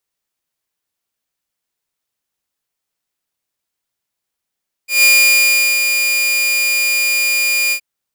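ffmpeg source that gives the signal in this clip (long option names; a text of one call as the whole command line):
ffmpeg -f lavfi -i "aevalsrc='0.631*(2*mod(2420*t,1)-1)':duration=2.92:sample_rate=44100,afade=type=in:duration=0.152,afade=type=out:start_time=0.152:duration=0.75:silence=0.473,afade=type=out:start_time=2.84:duration=0.08" out.wav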